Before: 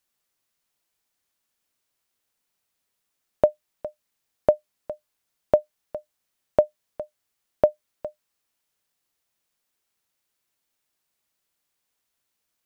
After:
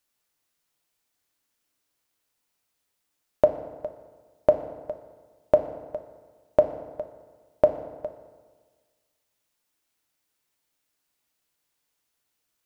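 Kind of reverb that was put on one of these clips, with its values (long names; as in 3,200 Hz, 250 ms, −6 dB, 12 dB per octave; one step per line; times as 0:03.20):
feedback delay network reverb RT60 1.5 s, low-frequency decay 1.05×, high-frequency decay 0.7×, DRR 6 dB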